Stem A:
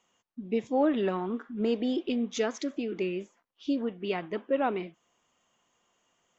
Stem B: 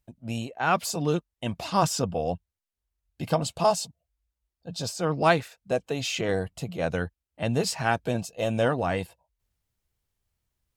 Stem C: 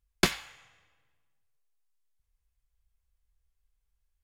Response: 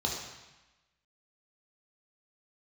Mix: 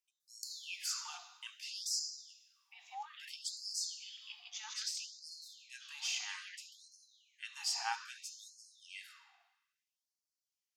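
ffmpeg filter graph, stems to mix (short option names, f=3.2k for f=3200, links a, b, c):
-filter_complex "[0:a]equalizer=f=4.8k:t=o:w=1.4:g=9.5,adelay=2200,volume=-11dB,asplit=3[a][b][c];[b]volume=-12dB[d];[c]volume=-6.5dB[e];[1:a]equalizer=f=5.4k:w=1.4:g=9.5,volume=-11dB,asplit=2[f][g];[g]volume=-10dB[h];[2:a]aecho=1:1:6.4:0.91,adelay=200,volume=0.5dB,asplit=2[i][j];[j]volume=-22dB[k];[a][i]amix=inputs=2:normalize=0,acompressor=threshold=-38dB:ratio=6,volume=0dB[l];[3:a]atrim=start_sample=2205[m];[d][h][k]amix=inputs=3:normalize=0[n];[n][m]afir=irnorm=-1:irlink=0[o];[e]aecho=0:1:155:1[p];[f][l][o][p]amix=inputs=4:normalize=0,asubboost=boost=6:cutoff=240,afftfilt=real='re*gte(b*sr/1024,680*pow(4200/680,0.5+0.5*sin(2*PI*0.61*pts/sr)))':imag='im*gte(b*sr/1024,680*pow(4200/680,0.5+0.5*sin(2*PI*0.61*pts/sr)))':win_size=1024:overlap=0.75"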